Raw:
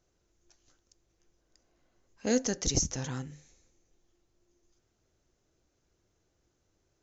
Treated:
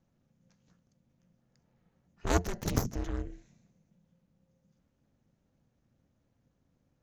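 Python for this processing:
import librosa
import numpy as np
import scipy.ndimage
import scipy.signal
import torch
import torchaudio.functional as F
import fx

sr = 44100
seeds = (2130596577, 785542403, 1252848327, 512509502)

y = fx.cheby_harmonics(x, sr, harmonics=(5, 6, 7), levels_db=(-13, -13, -7), full_scale_db=-11.5)
y = y * np.sin(2.0 * np.pi * 180.0 * np.arange(len(y)) / sr)
y = fx.bass_treble(y, sr, bass_db=8, treble_db=-10)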